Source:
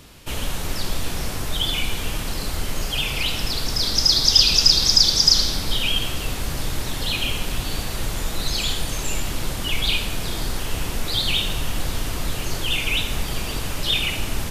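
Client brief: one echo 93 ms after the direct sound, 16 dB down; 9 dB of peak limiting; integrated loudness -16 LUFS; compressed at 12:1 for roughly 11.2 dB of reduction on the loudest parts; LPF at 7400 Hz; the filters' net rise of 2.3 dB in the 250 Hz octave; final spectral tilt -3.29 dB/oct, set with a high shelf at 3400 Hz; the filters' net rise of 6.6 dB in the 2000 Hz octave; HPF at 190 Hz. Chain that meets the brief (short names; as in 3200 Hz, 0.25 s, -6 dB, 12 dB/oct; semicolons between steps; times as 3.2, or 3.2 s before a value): HPF 190 Hz; LPF 7400 Hz; bell 250 Hz +5 dB; bell 2000 Hz +7 dB; high shelf 3400 Hz +4.5 dB; compressor 12:1, threshold -18 dBFS; limiter -16 dBFS; echo 93 ms -16 dB; gain +8 dB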